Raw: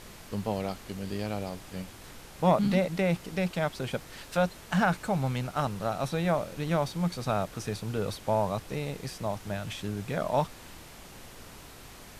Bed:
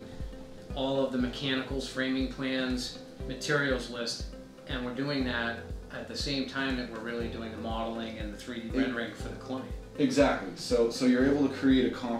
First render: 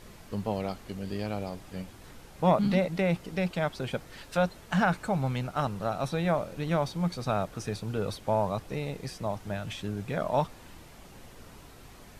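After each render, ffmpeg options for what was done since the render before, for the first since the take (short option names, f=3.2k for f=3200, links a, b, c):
-af "afftdn=nr=6:nf=-49"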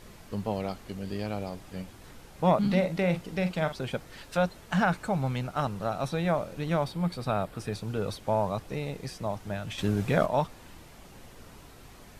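-filter_complex "[0:a]asettb=1/sr,asplit=3[a][b][c];[a]atrim=end=2.724[d];[b]atrim=start=2.72:end=3.73,asetpts=PTS-STARTPTS,afade=t=in:d=0.004:c=qsin,afade=t=out:st=1.006:d=0.004:c=qsin,asplit=2[e][f];[f]adelay=44,volume=-10dB[g];[e][g]amix=inputs=2:normalize=0,atrim=end_sample=44541[h];[c]atrim=start=3.726[i];[d][h]acrossfade=d=0.004:c1=hsin:c2=qsin[j];[j][i]acrossfade=d=0.004:c1=qsin:c2=hsin,asettb=1/sr,asplit=3[k][l][m];[k]atrim=end=6.844[n];[l]atrim=start=6.84:end=7.73,asetpts=PTS-STARTPTS,afade=t=in:d=0.004:c=qsin,afade=t=out:st=0.886:d=0.004:c=qsin,equalizer=f=6.2k:t=o:w=0.32:g=-9[o];[m]atrim=start=7.726[p];[n][o]acrossfade=d=0.004:c1=hsin:c2=qsin[q];[q][p]acrossfade=d=0.004:c1=qsin:c2=hsin,asettb=1/sr,asplit=3[r][s][t];[r]atrim=end=9.784[u];[s]atrim=start=9.78:end=10.26,asetpts=PTS-STARTPTS,afade=t=in:d=0.004:c=qsin,afade=t=out:st=0.476:d=0.004:c=qsin,acontrast=83[v];[t]atrim=start=10.256[w];[u][v]acrossfade=d=0.004:c1=hsin:c2=qsin[x];[x][w]acrossfade=d=0.004:c1=qsin:c2=hsin"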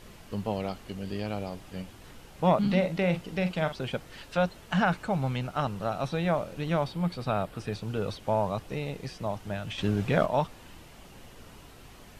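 -filter_complex "[0:a]acrossover=split=5900[a][b];[b]acompressor=threshold=-57dB:ratio=4:attack=1:release=60[c];[a][c]amix=inputs=2:normalize=0,equalizer=f=2.9k:w=5:g=4.5"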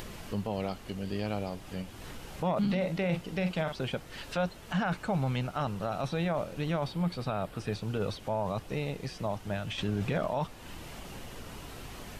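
-af "alimiter=limit=-22dB:level=0:latency=1:release=19,acompressor=mode=upward:threshold=-35dB:ratio=2.5"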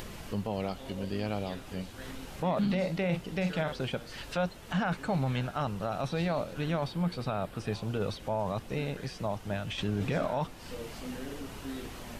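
-filter_complex "[1:a]volume=-17dB[a];[0:a][a]amix=inputs=2:normalize=0"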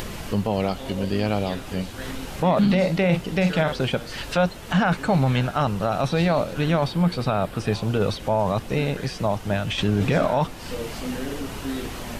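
-af "volume=10dB"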